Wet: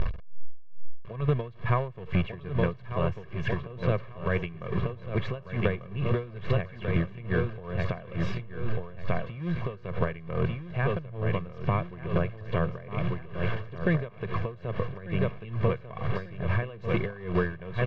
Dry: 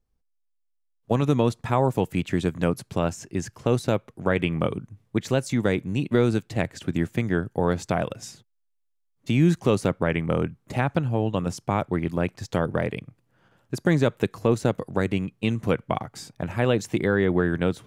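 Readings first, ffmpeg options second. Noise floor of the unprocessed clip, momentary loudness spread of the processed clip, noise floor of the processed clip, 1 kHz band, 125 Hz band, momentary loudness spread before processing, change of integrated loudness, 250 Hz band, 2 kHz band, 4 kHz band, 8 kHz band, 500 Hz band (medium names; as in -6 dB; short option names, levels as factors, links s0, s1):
-72 dBFS, 5 LU, -44 dBFS, -5.5 dB, -2.5 dB, 9 LU, -6.0 dB, -8.5 dB, -4.0 dB, -8.0 dB, under -25 dB, -6.5 dB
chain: -filter_complex "[0:a]aeval=exprs='val(0)+0.5*0.0316*sgn(val(0))':c=same,equalizer=f=570:t=o:w=0.45:g=-5.5,asplit=2[s0][s1];[s1]acrusher=bits=4:dc=4:mix=0:aa=0.000001,volume=0.501[s2];[s0][s2]amix=inputs=2:normalize=0,lowpass=f=2900:w=0.5412,lowpass=f=2900:w=1.3066,aecho=1:1:1.8:0.84,asplit=2[s3][s4];[s4]aecho=0:1:1193|2386|3579|4772|5965|7158:0.473|0.222|0.105|0.0491|0.0231|0.0109[s5];[s3][s5]amix=inputs=2:normalize=0,acompressor=threshold=0.0282:ratio=8,lowshelf=f=190:g=3.5,aeval=exprs='val(0)*pow(10,-19*(0.5-0.5*cos(2*PI*2.3*n/s))/20)':c=same,volume=2.66"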